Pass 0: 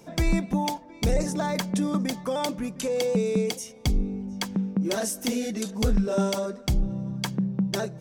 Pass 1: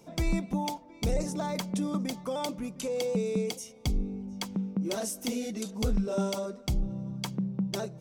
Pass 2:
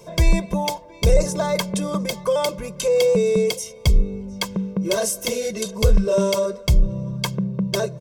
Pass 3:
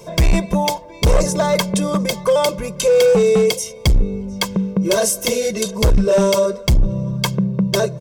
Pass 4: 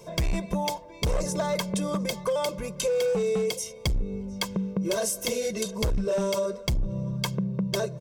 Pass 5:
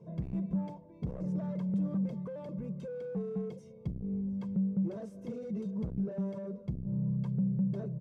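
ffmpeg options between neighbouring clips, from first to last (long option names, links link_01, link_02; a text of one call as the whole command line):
ffmpeg -i in.wav -af "equalizer=frequency=1700:width_type=o:width=0.26:gain=-8.5,volume=-5dB" out.wav
ffmpeg -i in.wav -af "aecho=1:1:1.9:0.94,volume=8.5dB" out.wav
ffmpeg -i in.wav -af "asoftclip=type=hard:threshold=-14.5dB,volume=5.5dB" out.wav
ffmpeg -i in.wav -af "acompressor=threshold=-15dB:ratio=6,volume=-8dB" out.wav
ffmpeg -i in.wav -af "asoftclip=type=tanh:threshold=-27dB,bandpass=frequency=170:width_type=q:width=1.8:csg=0,volume=3dB" out.wav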